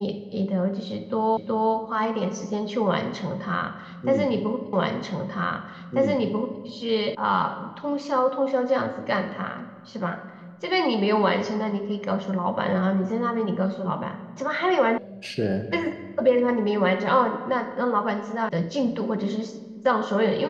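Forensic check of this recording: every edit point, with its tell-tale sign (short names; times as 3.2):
1.37 repeat of the last 0.37 s
4.73 repeat of the last 1.89 s
7.15 sound cut off
14.98 sound cut off
18.49 sound cut off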